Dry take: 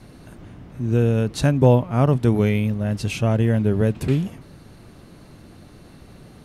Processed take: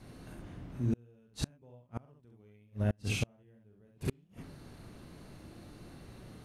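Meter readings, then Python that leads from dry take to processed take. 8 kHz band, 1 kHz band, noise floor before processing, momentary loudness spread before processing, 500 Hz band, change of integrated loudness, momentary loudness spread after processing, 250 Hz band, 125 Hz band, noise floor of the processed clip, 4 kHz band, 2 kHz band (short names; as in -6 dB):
-9.5 dB, -23.0 dB, -46 dBFS, 8 LU, -23.5 dB, -18.5 dB, 17 LU, -19.0 dB, -18.5 dB, -64 dBFS, -10.0 dB, -13.0 dB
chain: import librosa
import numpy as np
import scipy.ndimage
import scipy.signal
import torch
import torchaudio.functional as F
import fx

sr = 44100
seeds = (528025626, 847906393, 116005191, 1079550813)

y = fx.room_early_taps(x, sr, ms=(41, 67), db=(-7.0, -3.5))
y = fx.gate_flip(y, sr, shuts_db=-12.0, range_db=-36)
y = y * 10.0 ** (-8.0 / 20.0)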